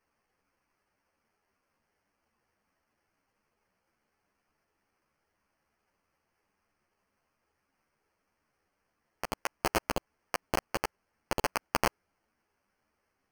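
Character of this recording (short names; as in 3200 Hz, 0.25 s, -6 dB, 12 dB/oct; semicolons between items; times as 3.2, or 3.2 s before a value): aliases and images of a low sample rate 3700 Hz, jitter 0%; a shimmering, thickened sound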